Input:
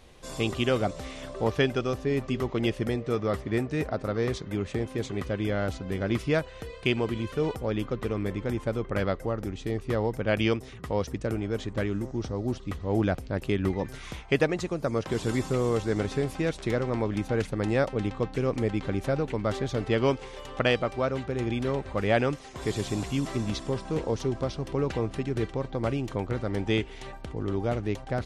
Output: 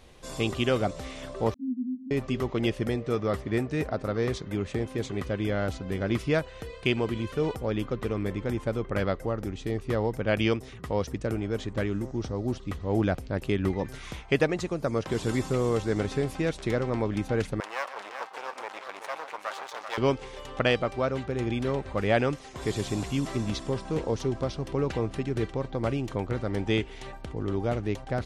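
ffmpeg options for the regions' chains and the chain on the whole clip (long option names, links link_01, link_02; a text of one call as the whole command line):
ffmpeg -i in.wav -filter_complex "[0:a]asettb=1/sr,asplit=3[link_01][link_02][link_03];[link_01]atrim=end=1.544[link_04];[link_02]atrim=start=1.54:end=2.11,asetpts=PTS-STARTPTS,afade=type=in:duration=0.004:curve=qsin,afade=type=out:start_time=0.566:duration=0.004:curve=qsin,asuperpass=centerf=240:order=8:qfactor=5.5,acontrast=39[link_05];[link_03]atrim=start=2.106[link_06];[link_04][link_05]acrossfade=duration=0.004:curve1=hsin:curve2=qsin[link_07];[link_07][link_06]acrossfade=duration=0.004:curve1=qsin:curve2=hsin,asettb=1/sr,asplit=3[link_08][link_09][link_10];[link_08]atrim=end=17.604[link_11];[link_09]atrim=start=17.6:end=19.98,asetpts=PTS-STARTPTS,afade=type=in:duration=0.004:curve=qsin,afade=type=out:start_time=2.376:duration=0.004:curve=qsin,aecho=1:1:129|385:0.224|0.422,atrim=end_sample=104958,aeval=exprs='max(val(0),0)':channel_layout=same,highpass=frequency=950:width_type=q:width=1.5[link_12];[link_10]atrim=start=19.976[link_13];[link_11][link_12]acrossfade=duration=0.004:curve1=hsin:curve2=qsin[link_14];[link_14][link_13]acrossfade=duration=0.004:curve1=qsin:curve2=hsin" out.wav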